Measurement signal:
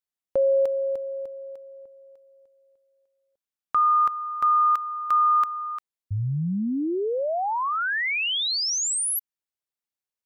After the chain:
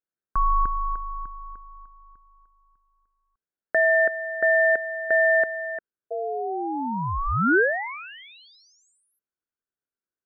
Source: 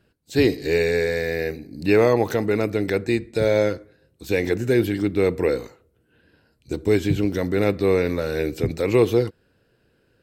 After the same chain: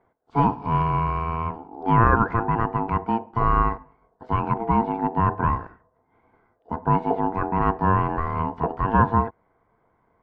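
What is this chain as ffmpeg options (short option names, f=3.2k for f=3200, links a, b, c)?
-af "lowpass=f=970:t=q:w=3.7,aeval=exprs='val(0)*sin(2*PI*570*n/s)':c=same"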